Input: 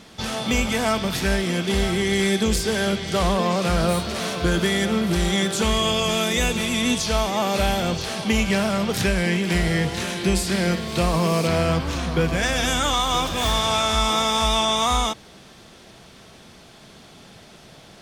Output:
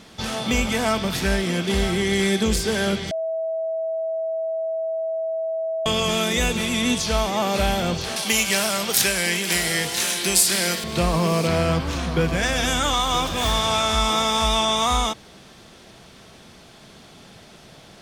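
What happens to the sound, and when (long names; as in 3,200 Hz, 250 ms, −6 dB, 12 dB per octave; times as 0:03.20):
0:03.11–0:05.86: beep over 649 Hz −22.5 dBFS
0:08.16–0:10.84: RIAA equalisation recording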